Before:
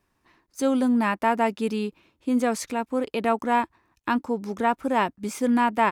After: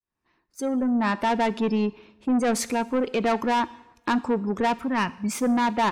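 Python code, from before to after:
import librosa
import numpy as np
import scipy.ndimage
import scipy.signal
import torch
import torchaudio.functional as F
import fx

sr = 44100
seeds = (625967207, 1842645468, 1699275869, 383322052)

p1 = fx.fade_in_head(x, sr, length_s=1.46)
p2 = fx.spec_gate(p1, sr, threshold_db=-30, keep='strong')
p3 = fx.band_shelf(p2, sr, hz=520.0, db=-11.5, octaves=1.7, at=(4.8, 5.32))
p4 = fx.rider(p3, sr, range_db=10, speed_s=2.0)
p5 = p3 + (p4 * librosa.db_to_amplitude(-2.0))
p6 = 10.0 ** (-18.0 / 20.0) * np.tanh(p5 / 10.0 ** (-18.0 / 20.0))
y = fx.rev_double_slope(p6, sr, seeds[0], early_s=0.78, late_s=2.9, knee_db=-26, drr_db=15.5)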